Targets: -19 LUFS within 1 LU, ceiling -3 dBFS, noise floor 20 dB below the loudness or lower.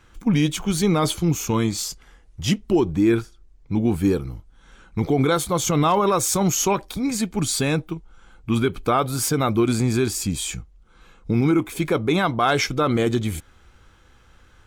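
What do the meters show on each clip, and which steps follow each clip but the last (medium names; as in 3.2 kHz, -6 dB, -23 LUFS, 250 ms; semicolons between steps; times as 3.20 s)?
loudness -21.5 LUFS; peak level -9.0 dBFS; loudness target -19.0 LUFS
-> trim +2.5 dB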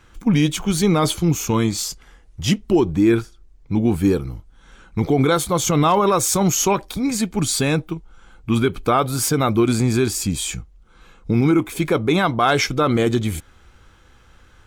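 loudness -19.0 LUFS; peak level -6.5 dBFS; noise floor -51 dBFS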